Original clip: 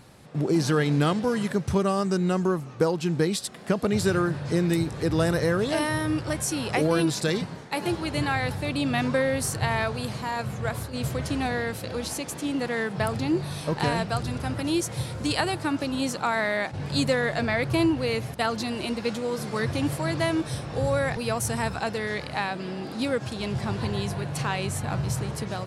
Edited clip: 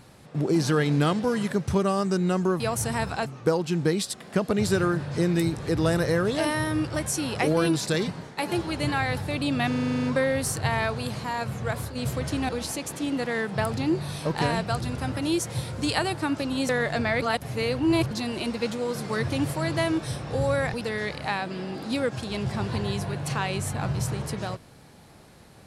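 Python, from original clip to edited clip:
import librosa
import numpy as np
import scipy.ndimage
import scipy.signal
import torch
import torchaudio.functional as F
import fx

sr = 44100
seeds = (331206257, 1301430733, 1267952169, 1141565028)

y = fx.edit(x, sr, fx.stutter(start_s=9.02, slice_s=0.04, count=10),
    fx.cut(start_s=11.47, length_s=0.44),
    fx.cut(start_s=16.11, length_s=1.01),
    fx.reverse_span(start_s=17.65, length_s=0.89),
    fx.move(start_s=21.24, length_s=0.66, to_s=2.6), tone=tone)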